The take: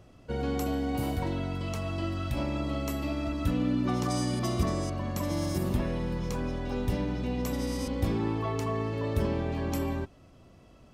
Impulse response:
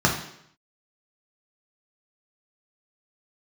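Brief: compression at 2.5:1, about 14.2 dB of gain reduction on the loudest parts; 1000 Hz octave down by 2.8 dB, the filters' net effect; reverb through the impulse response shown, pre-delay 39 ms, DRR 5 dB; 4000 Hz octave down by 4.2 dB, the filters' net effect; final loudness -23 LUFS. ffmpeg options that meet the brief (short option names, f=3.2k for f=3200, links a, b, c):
-filter_complex "[0:a]equalizer=f=1k:t=o:g=-3.5,equalizer=f=4k:t=o:g=-5.5,acompressor=threshold=-45dB:ratio=2.5,asplit=2[a][b];[1:a]atrim=start_sample=2205,adelay=39[c];[b][c]afir=irnorm=-1:irlink=0,volume=-22dB[d];[a][d]amix=inputs=2:normalize=0,volume=17dB"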